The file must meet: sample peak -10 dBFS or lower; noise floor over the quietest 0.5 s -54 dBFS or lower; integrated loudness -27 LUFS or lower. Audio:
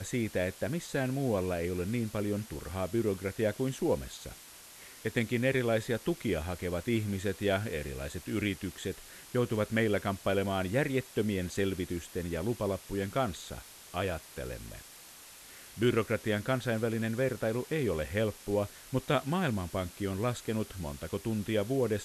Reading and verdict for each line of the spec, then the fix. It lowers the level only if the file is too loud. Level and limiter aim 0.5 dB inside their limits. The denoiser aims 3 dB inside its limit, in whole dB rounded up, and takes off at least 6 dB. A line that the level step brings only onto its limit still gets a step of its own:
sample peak -15.0 dBFS: OK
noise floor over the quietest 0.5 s -52 dBFS: fail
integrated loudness -33.0 LUFS: OK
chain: denoiser 6 dB, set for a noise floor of -52 dBFS

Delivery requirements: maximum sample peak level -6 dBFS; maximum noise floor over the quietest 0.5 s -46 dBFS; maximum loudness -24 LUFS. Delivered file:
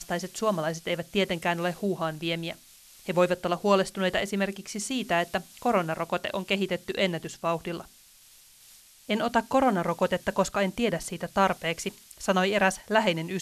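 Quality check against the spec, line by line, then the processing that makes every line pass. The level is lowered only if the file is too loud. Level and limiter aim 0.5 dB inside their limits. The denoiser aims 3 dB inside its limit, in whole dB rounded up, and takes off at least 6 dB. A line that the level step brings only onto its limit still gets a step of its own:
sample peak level -8.5 dBFS: OK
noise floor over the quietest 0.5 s -55 dBFS: OK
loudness -27.5 LUFS: OK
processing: none

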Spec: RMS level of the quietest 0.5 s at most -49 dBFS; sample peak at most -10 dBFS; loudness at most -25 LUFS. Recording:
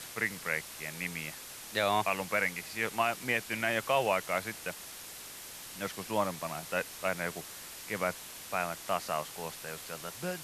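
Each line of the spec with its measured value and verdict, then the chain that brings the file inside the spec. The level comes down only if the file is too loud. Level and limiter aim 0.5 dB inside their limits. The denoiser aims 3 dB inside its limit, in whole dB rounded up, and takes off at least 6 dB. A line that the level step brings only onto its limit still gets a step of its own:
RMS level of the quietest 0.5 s -46 dBFS: fail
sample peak -15.5 dBFS: OK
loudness -34.0 LUFS: OK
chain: denoiser 6 dB, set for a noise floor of -46 dBFS

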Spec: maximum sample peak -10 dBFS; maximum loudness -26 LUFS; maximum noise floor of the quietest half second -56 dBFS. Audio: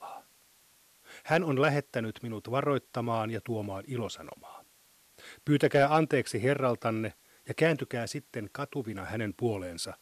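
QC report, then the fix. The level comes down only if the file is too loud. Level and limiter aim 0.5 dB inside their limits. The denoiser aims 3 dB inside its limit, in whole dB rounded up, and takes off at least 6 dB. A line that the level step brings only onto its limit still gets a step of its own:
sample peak -13.0 dBFS: OK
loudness -30.5 LUFS: OK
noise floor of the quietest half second -63 dBFS: OK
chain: none

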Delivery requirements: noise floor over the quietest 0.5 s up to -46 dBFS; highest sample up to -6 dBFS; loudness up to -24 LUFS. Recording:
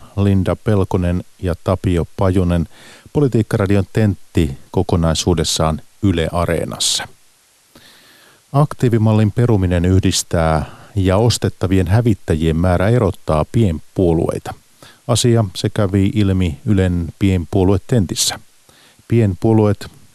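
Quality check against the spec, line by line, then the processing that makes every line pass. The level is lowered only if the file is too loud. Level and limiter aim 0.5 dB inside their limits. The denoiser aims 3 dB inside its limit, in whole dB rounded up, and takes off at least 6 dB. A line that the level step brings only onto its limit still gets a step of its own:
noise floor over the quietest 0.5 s -53 dBFS: OK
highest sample -2.5 dBFS: fail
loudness -16.5 LUFS: fail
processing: gain -8 dB

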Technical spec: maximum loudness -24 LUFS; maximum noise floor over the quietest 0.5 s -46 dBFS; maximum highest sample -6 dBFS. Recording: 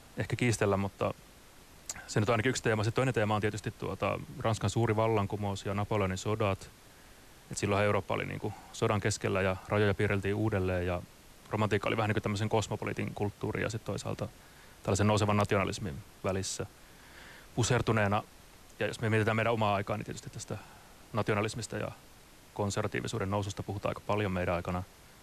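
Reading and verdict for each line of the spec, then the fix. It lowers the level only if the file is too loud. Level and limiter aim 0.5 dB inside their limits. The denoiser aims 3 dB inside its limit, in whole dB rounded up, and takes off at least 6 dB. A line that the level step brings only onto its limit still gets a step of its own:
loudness -32.0 LUFS: OK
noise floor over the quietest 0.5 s -56 dBFS: OK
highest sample -17.0 dBFS: OK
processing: none

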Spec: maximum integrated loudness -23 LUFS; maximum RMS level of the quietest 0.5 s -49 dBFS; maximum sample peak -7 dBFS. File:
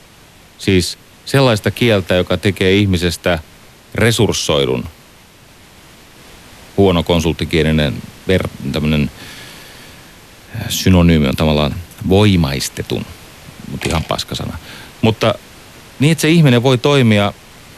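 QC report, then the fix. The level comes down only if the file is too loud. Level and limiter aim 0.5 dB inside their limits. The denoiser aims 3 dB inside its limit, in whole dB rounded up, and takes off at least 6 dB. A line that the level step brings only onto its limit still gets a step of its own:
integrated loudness -14.5 LUFS: fail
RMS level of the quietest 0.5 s -43 dBFS: fail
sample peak -1.5 dBFS: fail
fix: gain -9 dB

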